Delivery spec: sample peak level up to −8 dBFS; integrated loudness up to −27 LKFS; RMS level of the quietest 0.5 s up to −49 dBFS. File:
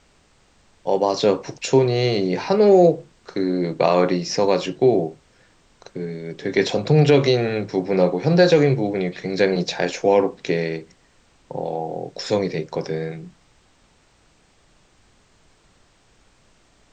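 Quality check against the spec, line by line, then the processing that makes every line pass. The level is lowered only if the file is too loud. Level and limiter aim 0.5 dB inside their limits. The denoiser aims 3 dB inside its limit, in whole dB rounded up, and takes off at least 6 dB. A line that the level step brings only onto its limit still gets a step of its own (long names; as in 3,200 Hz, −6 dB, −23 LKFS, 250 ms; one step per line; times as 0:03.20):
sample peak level −4.0 dBFS: out of spec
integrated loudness −20.0 LKFS: out of spec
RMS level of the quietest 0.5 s −58 dBFS: in spec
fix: level −7.5 dB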